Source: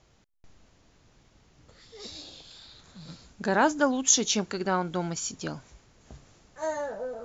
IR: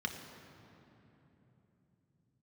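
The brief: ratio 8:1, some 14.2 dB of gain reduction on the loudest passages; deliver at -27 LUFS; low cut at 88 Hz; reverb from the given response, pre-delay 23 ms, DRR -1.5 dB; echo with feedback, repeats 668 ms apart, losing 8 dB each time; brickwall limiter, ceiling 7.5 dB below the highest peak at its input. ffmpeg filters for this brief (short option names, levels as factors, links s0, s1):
-filter_complex "[0:a]highpass=88,acompressor=threshold=0.0251:ratio=8,alimiter=level_in=1.68:limit=0.0631:level=0:latency=1,volume=0.596,aecho=1:1:668|1336|2004|2672|3340:0.398|0.159|0.0637|0.0255|0.0102,asplit=2[s0][s1];[1:a]atrim=start_sample=2205,adelay=23[s2];[s1][s2]afir=irnorm=-1:irlink=0,volume=0.794[s3];[s0][s3]amix=inputs=2:normalize=0,volume=2.99"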